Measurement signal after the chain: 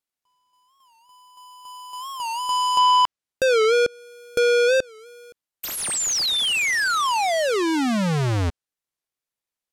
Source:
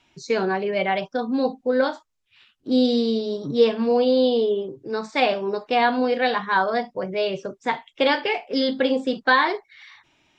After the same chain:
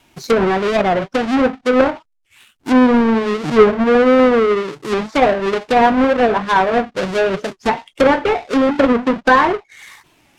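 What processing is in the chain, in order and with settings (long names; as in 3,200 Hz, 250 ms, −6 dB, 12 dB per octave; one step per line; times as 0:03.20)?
each half-wave held at its own peak
treble cut that deepens with the level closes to 1,800 Hz, closed at −15 dBFS
wow of a warped record 45 rpm, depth 160 cents
level +4 dB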